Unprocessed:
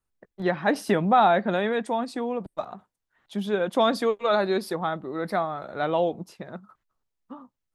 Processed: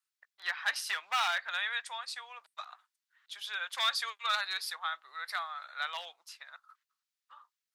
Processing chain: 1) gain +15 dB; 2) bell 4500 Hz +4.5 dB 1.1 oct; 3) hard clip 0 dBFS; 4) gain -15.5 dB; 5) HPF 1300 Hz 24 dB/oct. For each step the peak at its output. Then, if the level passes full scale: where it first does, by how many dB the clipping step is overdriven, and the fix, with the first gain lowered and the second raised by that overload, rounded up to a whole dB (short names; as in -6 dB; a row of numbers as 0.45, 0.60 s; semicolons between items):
+6.5, +6.5, 0.0, -15.5, -17.5 dBFS; step 1, 6.5 dB; step 1 +8 dB, step 4 -8.5 dB